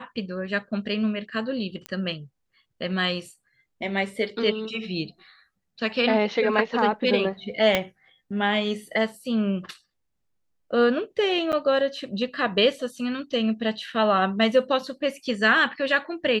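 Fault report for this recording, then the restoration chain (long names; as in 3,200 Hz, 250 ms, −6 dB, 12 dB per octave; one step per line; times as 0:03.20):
0:01.86: click −17 dBFS
0:07.75: click −7 dBFS
0:11.52–0:11.53: drop-out 8.2 ms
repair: click removal
repair the gap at 0:11.52, 8.2 ms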